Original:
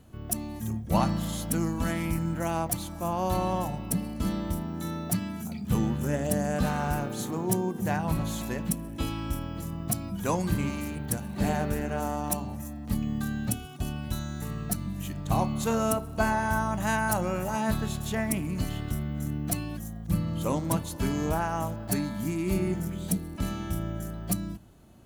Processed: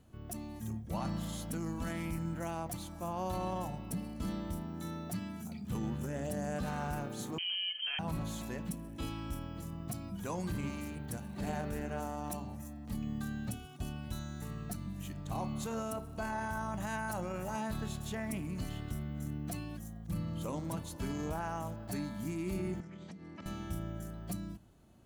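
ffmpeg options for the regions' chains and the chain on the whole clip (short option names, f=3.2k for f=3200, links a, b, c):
-filter_complex "[0:a]asettb=1/sr,asplit=3[a][b][c];[a]atrim=end=7.384[d];[b]atrim=start=7.38:end=7.99,asetpts=PTS-STARTPTS,afade=t=in:d=0.004:c=qsin,afade=t=out:st=0.606:d=0.004:c=qsin,lowpass=f=2.8k:t=q:w=0.5098,lowpass=f=2.8k:t=q:w=0.6013,lowpass=f=2.8k:t=q:w=0.9,lowpass=f=2.8k:t=q:w=2.563,afreqshift=-3300,aecho=1:1:4.1:0.4,atrim=end_sample=26901[e];[c]atrim=start=7.986[f];[d][e]acrossfade=d=0.004:c1=hsin:c2=qsin[g];[g][f]acrossfade=d=0.004:c1=qsin:c2=hsin,asettb=1/sr,asplit=3[h][i][j];[h]atrim=end=22.804[k];[i]atrim=start=22.8:end=23.46,asetpts=PTS-STARTPTS,afade=t=in:d=0.004:c=qsin,afade=t=out:st=0.656:d=0.004:c=qsin,acompressor=threshold=-34dB:ratio=16:attack=3.2:release=140:knee=1:detection=peak,highpass=140,equalizer=f=1.1k:t=q:w=4:g=4,equalizer=f=2k:t=q:w=4:g=7,equalizer=f=3.8k:t=q:w=4:g=-4,lowpass=f=5.8k:w=0.5412,lowpass=f=5.8k:w=1.3066[l];[j]atrim=start=23.456[m];[k][l]acrossfade=d=0.004:c1=hsin:c2=qsin[n];[n][m]acrossfade=d=0.004:c1=qsin:c2=hsin,equalizer=f=13k:t=o:w=0.45:g=-3.5,alimiter=limit=-21dB:level=0:latency=1:release=14,volume=-7.5dB"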